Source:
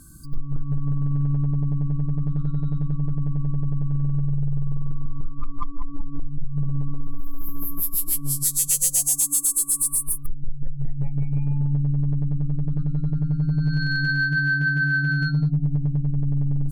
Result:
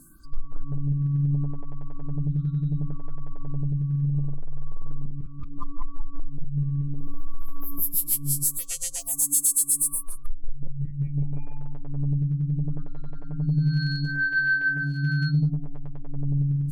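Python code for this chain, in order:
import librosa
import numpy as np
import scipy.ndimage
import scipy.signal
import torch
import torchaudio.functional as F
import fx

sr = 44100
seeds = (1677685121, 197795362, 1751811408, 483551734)

y = fx.stagger_phaser(x, sr, hz=0.71)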